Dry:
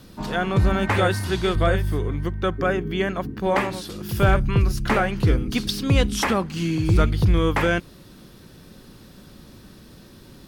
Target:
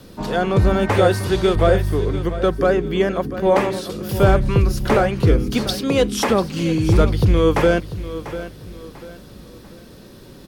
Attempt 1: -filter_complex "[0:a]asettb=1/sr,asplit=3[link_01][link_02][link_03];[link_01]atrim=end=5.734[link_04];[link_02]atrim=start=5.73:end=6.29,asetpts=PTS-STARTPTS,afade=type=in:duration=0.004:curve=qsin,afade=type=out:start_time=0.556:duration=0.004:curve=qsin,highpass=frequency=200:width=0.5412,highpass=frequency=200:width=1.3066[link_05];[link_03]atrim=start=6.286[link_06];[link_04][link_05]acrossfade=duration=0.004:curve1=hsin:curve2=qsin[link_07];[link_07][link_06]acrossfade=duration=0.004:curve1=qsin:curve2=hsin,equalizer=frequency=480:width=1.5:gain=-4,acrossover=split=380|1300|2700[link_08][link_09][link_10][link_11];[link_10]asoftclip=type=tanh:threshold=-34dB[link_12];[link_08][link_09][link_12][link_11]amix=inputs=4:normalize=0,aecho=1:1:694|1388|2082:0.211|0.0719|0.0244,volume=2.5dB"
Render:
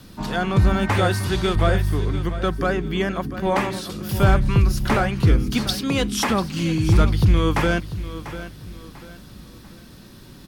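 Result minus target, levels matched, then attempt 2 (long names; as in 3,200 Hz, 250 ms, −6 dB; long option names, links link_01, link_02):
500 Hz band −5.0 dB
-filter_complex "[0:a]asettb=1/sr,asplit=3[link_01][link_02][link_03];[link_01]atrim=end=5.734[link_04];[link_02]atrim=start=5.73:end=6.29,asetpts=PTS-STARTPTS,afade=type=in:duration=0.004:curve=qsin,afade=type=out:start_time=0.556:duration=0.004:curve=qsin,highpass=frequency=200:width=0.5412,highpass=frequency=200:width=1.3066[link_05];[link_03]atrim=start=6.286[link_06];[link_04][link_05]acrossfade=duration=0.004:curve1=hsin:curve2=qsin[link_07];[link_07][link_06]acrossfade=duration=0.004:curve1=qsin:curve2=hsin,equalizer=frequency=480:width=1.5:gain=6,acrossover=split=380|1300|2700[link_08][link_09][link_10][link_11];[link_10]asoftclip=type=tanh:threshold=-34dB[link_12];[link_08][link_09][link_12][link_11]amix=inputs=4:normalize=0,aecho=1:1:694|1388|2082:0.211|0.0719|0.0244,volume=2.5dB"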